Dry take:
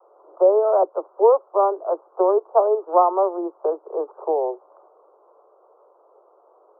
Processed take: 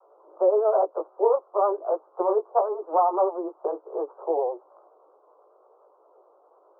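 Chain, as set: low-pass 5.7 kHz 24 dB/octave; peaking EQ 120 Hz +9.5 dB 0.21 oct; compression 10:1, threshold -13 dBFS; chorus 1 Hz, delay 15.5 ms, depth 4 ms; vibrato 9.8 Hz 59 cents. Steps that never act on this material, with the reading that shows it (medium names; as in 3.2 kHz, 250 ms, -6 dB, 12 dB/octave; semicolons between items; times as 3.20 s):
low-pass 5.7 kHz: input has nothing above 1.4 kHz; peaking EQ 120 Hz: input has nothing below 300 Hz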